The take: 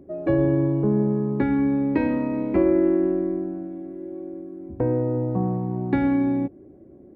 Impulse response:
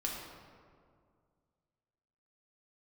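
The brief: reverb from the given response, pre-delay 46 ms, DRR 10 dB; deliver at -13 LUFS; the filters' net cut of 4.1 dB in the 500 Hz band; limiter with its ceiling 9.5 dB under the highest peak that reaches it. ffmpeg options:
-filter_complex "[0:a]equalizer=f=500:t=o:g=-6,alimiter=limit=-21.5dB:level=0:latency=1,asplit=2[a][b];[1:a]atrim=start_sample=2205,adelay=46[c];[b][c]afir=irnorm=-1:irlink=0,volume=-12.5dB[d];[a][d]amix=inputs=2:normalize=0,volume=16dB"

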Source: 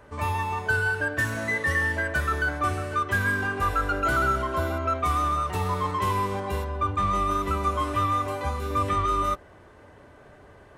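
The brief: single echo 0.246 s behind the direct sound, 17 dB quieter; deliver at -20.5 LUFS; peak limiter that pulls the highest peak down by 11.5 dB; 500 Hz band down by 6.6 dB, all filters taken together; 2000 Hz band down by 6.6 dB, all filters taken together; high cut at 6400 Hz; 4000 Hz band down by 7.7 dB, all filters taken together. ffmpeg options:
-af "lowpass=6.4k,equalizer=f=500:t=o:g=-8.5,equalizer=f=2k:t=o:g=-7.5,equalizer=f=4k:t=o:g=-6.5,alimiter=level_in=4dB:limit=-24dB:level=0:latency=1,volume=-4dB,aecho=1:1:246:0.141,volume=15.5dB"

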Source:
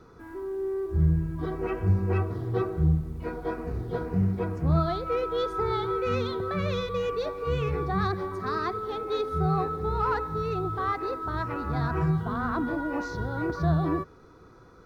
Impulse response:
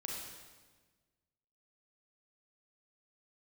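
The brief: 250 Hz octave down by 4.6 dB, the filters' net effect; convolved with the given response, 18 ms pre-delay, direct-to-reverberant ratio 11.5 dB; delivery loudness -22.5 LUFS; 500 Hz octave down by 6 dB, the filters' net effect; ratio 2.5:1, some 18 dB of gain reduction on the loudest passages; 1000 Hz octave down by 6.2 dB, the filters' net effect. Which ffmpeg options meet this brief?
-filter_complex "[0:a]equalizer=f=250:t=o:g=-7,equalizer=f=500:t=o:g=-3.5,equalizer=f=1k:t=o:g=-7.5,acompressor=threshold=-48dB:ratio=2.5,asplit=2[a][b];[1:a]atrim=start_sample=2205,adelay=18[c];[b][c]afir=irnorm=-1:irlink=0,volume=-11.5dB[d];[a][d]amix=inputs=2:normalize=0,volume=22.5dB"

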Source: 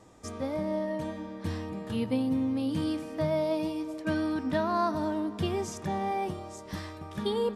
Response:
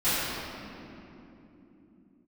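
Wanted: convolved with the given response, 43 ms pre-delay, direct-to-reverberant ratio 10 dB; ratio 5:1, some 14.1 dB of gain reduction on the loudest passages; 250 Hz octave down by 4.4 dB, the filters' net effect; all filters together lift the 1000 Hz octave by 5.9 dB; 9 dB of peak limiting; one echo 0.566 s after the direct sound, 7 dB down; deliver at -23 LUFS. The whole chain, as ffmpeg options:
-filter_complex "[0:a]equalizer=f=250:t=o:g=-6,equalizer=f=1k:t=o:g=7.5,acompressor=threshold=-35dB:ratio=5,alimiter=level_in=10.5dB:limit=-24dB:level=0:latency=1,volume=-10.5dB,aecho=1:1:566:0.447,asplit=2[a][b];[1:a]atrim=start_sample=2205,adelay=43[c];[b][c]afir=irnorm=-1:irlink=0,volume=-25dB[d];[a][d]amix=inputs=2:normalize=0,volume=18dB"

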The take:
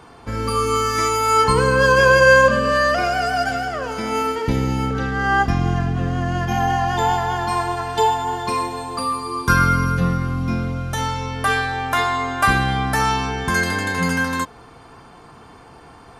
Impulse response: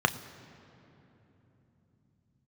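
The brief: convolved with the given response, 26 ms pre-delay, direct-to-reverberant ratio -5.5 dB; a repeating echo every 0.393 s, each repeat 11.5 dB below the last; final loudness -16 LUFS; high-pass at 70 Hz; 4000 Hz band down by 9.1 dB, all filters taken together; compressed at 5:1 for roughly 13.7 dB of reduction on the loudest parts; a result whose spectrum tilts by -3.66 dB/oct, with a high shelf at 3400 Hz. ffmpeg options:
-filter_complex "[0:a]highpass=70,highshelf=f=3.4k:g=-6,equalizer=f=4k:t=o:g=-8,acompressor=threshold=-25dB:ratio=5,aecho=1:1:393|786|1179:0.266|0.0718|0.0194,asplit=2[a][b];[1:a]atrim=start_sample=2205,adelay=26[c];[b][c]afir=irnorm=-1:irlink=0,volume=-7.5dB[d];[a][d]amix=inputs=2:normalize=0,volume=4dB"

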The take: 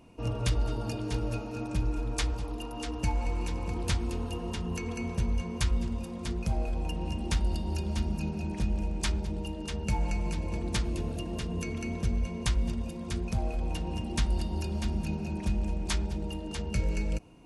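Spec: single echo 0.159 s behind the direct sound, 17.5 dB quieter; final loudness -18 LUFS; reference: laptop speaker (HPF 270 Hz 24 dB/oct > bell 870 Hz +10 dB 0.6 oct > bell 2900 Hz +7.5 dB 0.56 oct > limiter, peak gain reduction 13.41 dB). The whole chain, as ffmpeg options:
-af "highpass=f=270:w=0.5412,highpass=f=270:w=1.3066,equalizer=f=870:t=o:w=0.6:g=10,equalizer=f=2.9k:t=o:w=0.56:g=7.5,aecho=1:1:159:0.133,volume=20.5dB,alimiter=limit=-9dB:level=0:latency=1"

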